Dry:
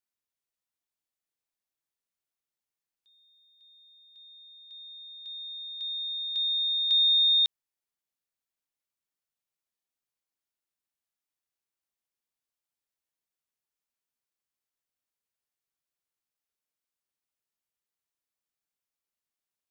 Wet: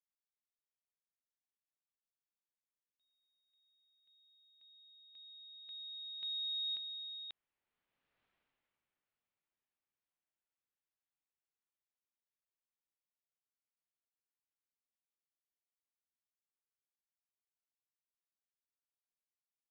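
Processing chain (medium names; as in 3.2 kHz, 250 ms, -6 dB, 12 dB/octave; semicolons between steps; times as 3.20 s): Doppler pass-by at 8.24 s, 7 m/s, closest 1.5 m; compressor with a negative ratio -45 dBFS, ratio -1; low-pass 3 kHz 24 dB/octave; trim +11.5 dB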